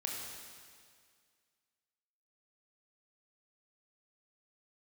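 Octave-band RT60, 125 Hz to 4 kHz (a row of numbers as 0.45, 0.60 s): 2.0, 2.0, 2.0, 2.0, 2.0, 2.0 s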